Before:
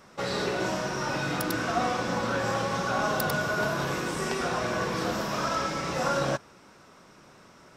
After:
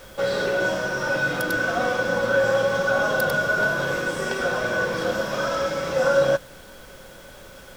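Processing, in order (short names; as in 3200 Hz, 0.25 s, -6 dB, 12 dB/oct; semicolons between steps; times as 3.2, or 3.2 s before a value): added noise pink -47 dBFS; small resonant body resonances 540/1500/3300 Hz, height 14 dB, ringing for 55 ms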